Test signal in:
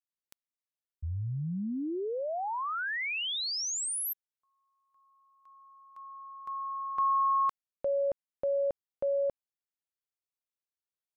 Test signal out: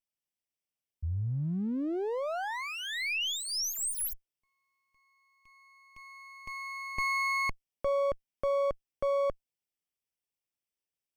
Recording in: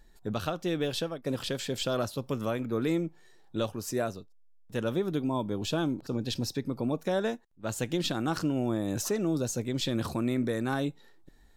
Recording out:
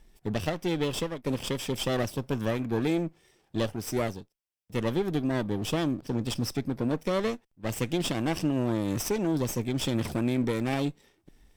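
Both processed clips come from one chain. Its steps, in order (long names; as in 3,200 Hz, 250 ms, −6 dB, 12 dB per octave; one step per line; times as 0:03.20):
lower of the sound and its delayed copy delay 0.36 ms
level +2 dB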